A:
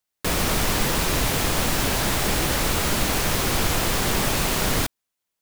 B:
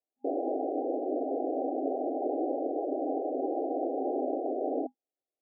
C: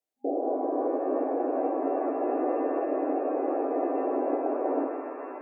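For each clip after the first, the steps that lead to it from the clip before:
FFT band-pass 250–810 Hz; gain -1 dB
shimmer reverb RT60 3.6 s, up +7 st, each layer -8 dB, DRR 4.5 dB; gain +2 dB

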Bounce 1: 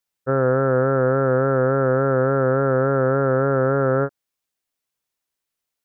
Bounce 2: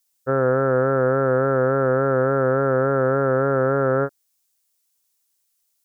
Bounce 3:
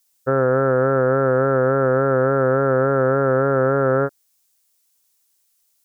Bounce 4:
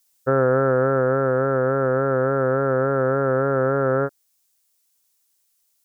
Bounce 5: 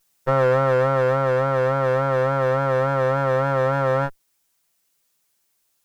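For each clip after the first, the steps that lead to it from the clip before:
tone controls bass -3 dB, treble +14 dB
limiter -13.5 dBFS, peak gain reduction 4.5 dB; gain +5 dB
vocal rider 2 s; gain -2.5 dB
minimum comb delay 5.9 ms

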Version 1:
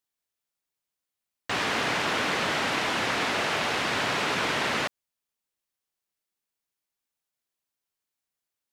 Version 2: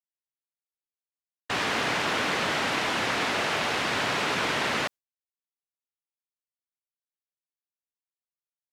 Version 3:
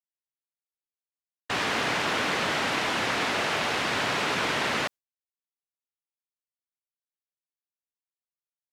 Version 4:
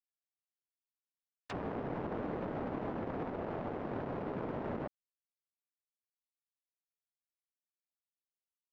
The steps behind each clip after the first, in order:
gate with hold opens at -19 dBFS
nothing audible
power-law curve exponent 2; treble ducked by the level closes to 550 Hz, closed at -37 dBFS; limiter -36 dBFS, peak gain reduction 11.5 dB; gain +7.5 dB

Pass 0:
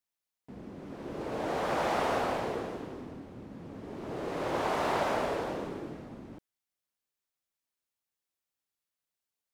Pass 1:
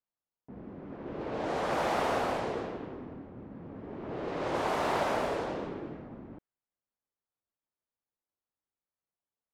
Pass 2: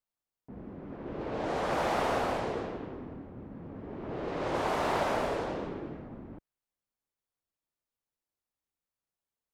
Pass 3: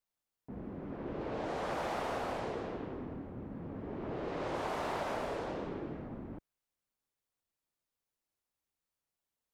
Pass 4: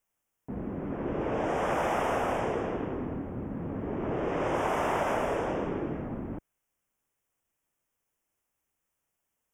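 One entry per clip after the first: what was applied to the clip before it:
low-pass opened by the level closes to 1200 Hz, open at -26.5 dBFS
low shelf 73 Hz +7 dB
compressor 2.5:1, threshold -38 dBFS, peak gain reduction 9 dB; gain +1 dB
Butterworth band-stop 4200 Hz, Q 1.8; gain +8 dB

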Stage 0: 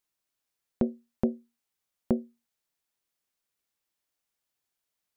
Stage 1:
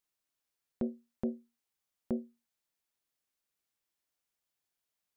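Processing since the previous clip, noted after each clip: limiter -19 dBFS, peak gain reduction 7.5 dB; gain -3 dB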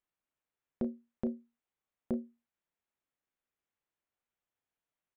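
Wiener smoothing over 9 samples; doubler 33 ms -12.5 dB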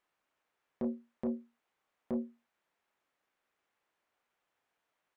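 overdrive pedal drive 16 dB, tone 1600 Hz, clips at -22 dBFS; limiter -31.5 dBFS, peak gain reduction 8.5 dB; gain +5 dB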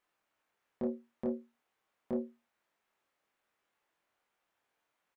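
doubler 24 ms -3 dB; gain -1 dB

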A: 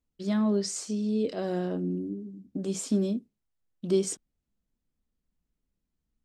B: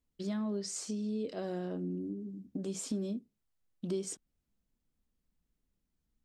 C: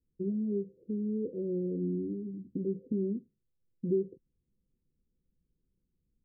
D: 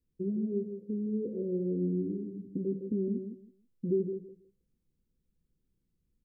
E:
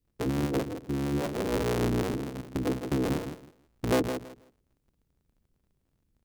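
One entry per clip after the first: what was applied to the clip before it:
compressor 2.5:1, threshold -37 dBFS, peak gain reduction 11.5 dB
rippled Chebyshev low-pass 530 Hz, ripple 6 dB; gain +7 dB
feedback echo 0.161 s, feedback 20%, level -8 dB
cycle switcher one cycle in 3, inverted; gain +3.5 dB

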